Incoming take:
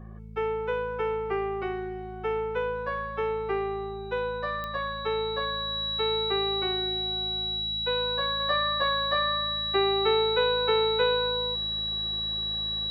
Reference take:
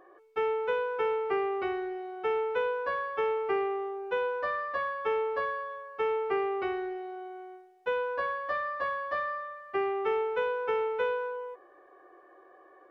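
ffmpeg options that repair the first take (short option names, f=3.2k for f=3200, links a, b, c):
-af "adeclick=t=4,bandreject=f=54.1:t=h:w=4,bandreject=f=108.2:t=h:w=4,bandreject=f=162.3:t=h:w=4,bandreject=f=216.4:t=h:w=4,bandreject=f=3.9k:w=30,asetnsamples=n=441:p=0,asendcmd='8.4 volume volume -4.5dB',volume=0dB"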